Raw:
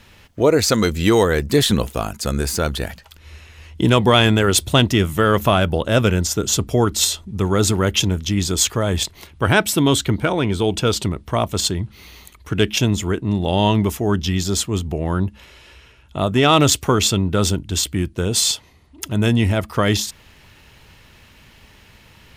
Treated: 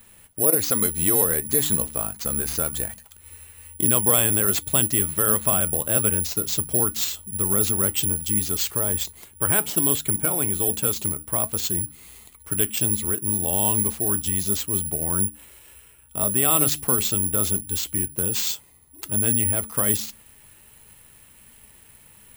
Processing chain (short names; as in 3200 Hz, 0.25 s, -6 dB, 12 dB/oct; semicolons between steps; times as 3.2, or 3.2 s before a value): bell 12000 Hz -7 dB 1.8 oct; de-hum 73.62 Hz, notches 4; in parallel at -1 dB: compressor, threshold -20 dBFS, peak gain reduction 11 dB; on the sum: flange 1.3 Hz, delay 4 ms, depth 3.2 ms, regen +80%; careless resampling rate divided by 4×, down none, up zero stuff; gain -9 dB